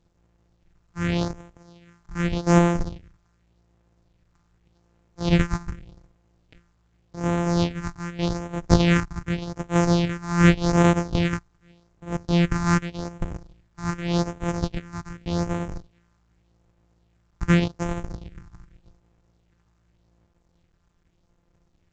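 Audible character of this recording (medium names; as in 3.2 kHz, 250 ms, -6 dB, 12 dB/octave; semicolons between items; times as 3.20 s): a buzz of ramps at a fixed pitch in blocks of 256 samples; phasing stages 4, 0.85 Hz, lowest notch 500–4600 Hz; A-law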